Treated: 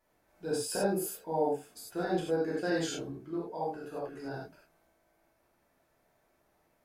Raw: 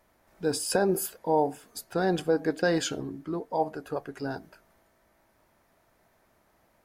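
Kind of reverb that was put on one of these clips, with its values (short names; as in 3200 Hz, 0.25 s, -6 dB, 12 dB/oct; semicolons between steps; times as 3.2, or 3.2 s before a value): non-linear reverb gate 0.12 s flat, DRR -6 dB; gain -12.5 dB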